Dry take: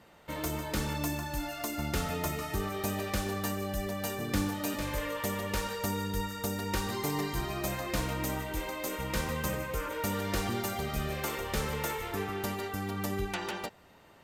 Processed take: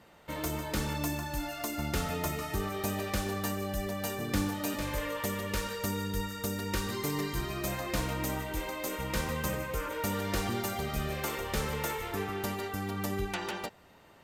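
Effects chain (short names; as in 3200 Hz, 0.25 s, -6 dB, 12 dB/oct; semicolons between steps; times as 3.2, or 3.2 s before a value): 5.26–7.67 bell 790 Hz -9 dB 0.37 oct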